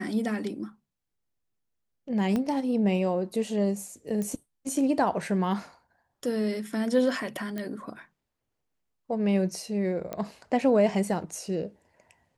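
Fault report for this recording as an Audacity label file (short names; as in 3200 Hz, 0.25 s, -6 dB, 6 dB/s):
2.360000	2.360000	pop -17 dBFS
4.220000	4.220000	pop -21 dBFS
7.580000	7.580000	pop -21 dBFS
10.130000	10.130000	pop -20 dBFS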